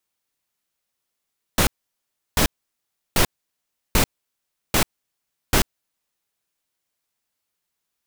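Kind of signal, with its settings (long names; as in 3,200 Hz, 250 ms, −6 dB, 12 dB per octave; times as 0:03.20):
noise bursts pink, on 0.09 s, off 0.70 s, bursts 6, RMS −16.5 dBFS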